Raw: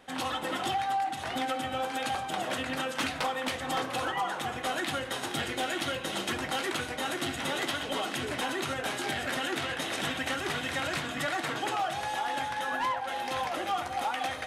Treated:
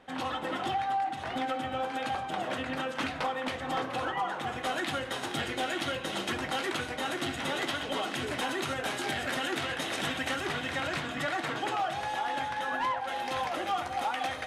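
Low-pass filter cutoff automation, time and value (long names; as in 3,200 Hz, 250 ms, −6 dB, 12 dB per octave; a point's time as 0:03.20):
low-pass filter 6 dB per octave
2,600 Hz
from 0:04.47 6,100 Hz
from 0:08.18 11,000 Hz
from 0:10.46 4,400 Hz
from 0:13.00 7,500 Hz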